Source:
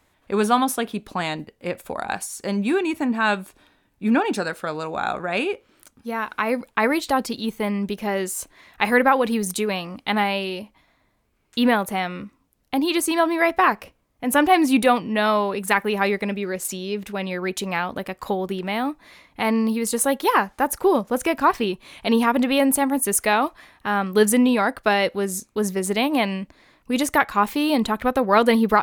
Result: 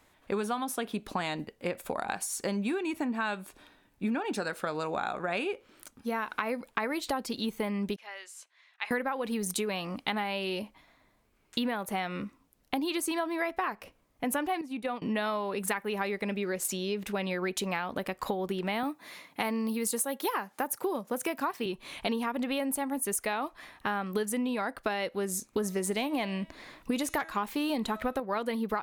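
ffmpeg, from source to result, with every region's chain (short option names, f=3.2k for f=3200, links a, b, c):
-filter_complex "[0:a]asettb=1/sr,asplit=3[a][b][c];[a]atrim=end=7.964[d];[b]atrim=start=7.96:end=8.91,asetpts=PTS-STARTPTS,afade=t=in:d=0.004:c=qsin,afade=t=out:st=0.946:d=0.004:c=qsin,highpass=510,lowpass=3k,aderivative[e];[c]atrim=start=8.906[f];[d][e]acrossfade=d=0.004:c1=hsin:c2=qsin[g];[g][f]acrossfade=d=0.004:c1=qsin:c2=hsin,asettb=1/sr,asplit=3[h][i][j];[h]atrim=end=14.614[k];[i]atrim=start=14.61:end=15.02,asetpts=PTS-STARTPTS,afade=t=in:d=0.004:c=qsin,afade=t=out:st=0.406:d=0.004:c=qsin,agate=range=-33dB:threshold=-15dB:ratio=3:release=100:detection=peak,highshelf=f=5.7k:g=-8.5,acompressor=threshold=-26dB:ratio=5:attack=3.2:release=140:knee=1:detection=peak[l];[j]atrim=start=15.016[m];[k][l]acrossfade=d=0.004:c1=hsin:c2=qsin[n];[n][m]acrossfade=d=0.004:c1=qsin:c2=hsin,asettb=1/sr,asplit=3[o][p][q];[o]atrim=end=18.834[r];[p]atrim=start=18.83:end=21.66,asetpts=PTS-STARTPTS,afade=t=in:d=0.004:c=qsin,afade=t=out:st=2.826:d=0.004:c=qsin,highpass=f=120:w=0.5412,highpass=f=120:w=1.3066,highshelf=f=9.7k:g=10[s];[q]atrim=start=21.656[t];[r][s]acrossfade=d=0.004:c1=hsin:c2=qsin[u];[u][t]acrossfade=d=0.004:c1=qsin:c2=hsin,asettb=1/sr,asplit=3[v][w][x];[v]atrim=end=25.534[y];[w]atrim=start=25.53:end=28.2,asetpts=PTS-STARTPTS,afade=t=in:d=0.004:c=qsin,afade=t=out:st=2.666:d=0.004:c=qsin,bandreject=f=322.9:t=h:w=4,bandreject=f=645.8:t=h:w=4,bandreject=f=968.7:t=h:w=4,bandreject=f=1.2916k:t=h:w=4,bandreject=f=1.6145k:t=h:w=4,bandreject=f=1.9374k:t=h:w=4,bandreject=f=2.2603k:t=h:w=4,bandreject=f=2.5832k:t=h:w=4,bandreject=f=2.9061k:t=h:w=4,bandreject=f=3.229k:t=h:w=4,bandreject=f=3.5519k:t=h:w=4,bandreject=f=3.8748k:t=h:w=4,bandreject=f=4.1977k:t=h:w=4,bandreject=f=4.5206k:t=h:w=4,bandreject=f=4.8435k:t=h:w=4,bandreject=f=5.1664k:t=h:w=4,bandreject=f=5.4893k:t=h:w=4,bandreject=f=5.8122k:t=h:w=4,bandreject=f=6.1351k:t=h:w=4,bandreject=f=6.458k:t=h:w=4,bandreject=f=6.7809k:t=h:w=4,bandreject=f=7.1038k:t=h:w=4,bandreject=f=7.4267k:t=h:w=4,bandreject=f=7.7496k:t=h:w=4,bandreject=f=8.0725k:t=h:w=4,bandreject=f=8.3954k:t=h:w=4,bandreject=f=8.7183k:t=h:w=4,bandreject=f=9.0412k:t=h:w=4,bandreject=f=9.3641k:t=h:w=4,bandreject=f=9.687k:t=h:w=4,bandreject=f=10.0099k:t=h:w=4,bandreject=f=10.3328k:t=h:w=4,bandreject=f=10.6557k:t=h:w=4,bandreject=f=10.9786k:t=h:w=4,bandreject=f=11.3015k:t=h:w=4,bandreject=f=11.6244k:t=h:w=4,acontrast=55[z];[x]atrim=start=28.196[aa];[y][z]acrossfade=d=0.004:c1=hsin:c2=qsin[ab];[ab][aa]acrossfade=d=0.004:c1=qsin:c2=hsin,equalizer=f=74:w=0.64:g=-4,acompressor=threshold=-28dB:ratio=10"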